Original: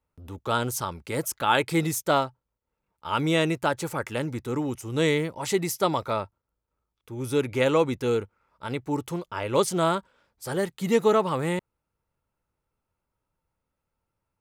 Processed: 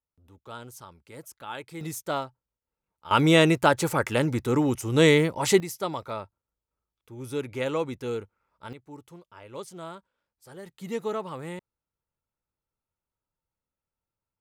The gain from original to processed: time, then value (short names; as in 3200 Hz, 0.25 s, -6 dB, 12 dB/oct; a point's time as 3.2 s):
-15.5 dB
from 1.81 s -7 dB
from 3.11 s +5 dB
from 5.6 s -6.5 dB
from 8.73 s -16.5 dB
from 10.66 s -10 dB